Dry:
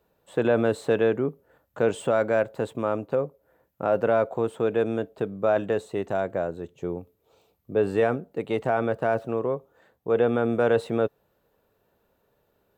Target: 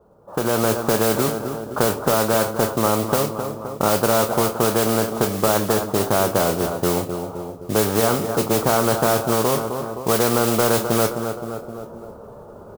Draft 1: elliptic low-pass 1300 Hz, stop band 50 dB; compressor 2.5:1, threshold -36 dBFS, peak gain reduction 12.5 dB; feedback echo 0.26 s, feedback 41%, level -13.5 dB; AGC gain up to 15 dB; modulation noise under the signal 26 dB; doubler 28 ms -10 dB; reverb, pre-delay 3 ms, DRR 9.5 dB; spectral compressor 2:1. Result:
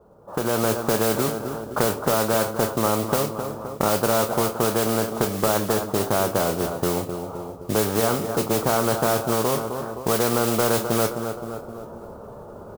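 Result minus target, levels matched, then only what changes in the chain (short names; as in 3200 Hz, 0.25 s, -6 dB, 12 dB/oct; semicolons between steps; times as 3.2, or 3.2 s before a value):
compressor: peak gain reduction +5.5 dB
change: compressor 2.5:1, threshold -27 dBFS, peak gain reduction 7.5 dB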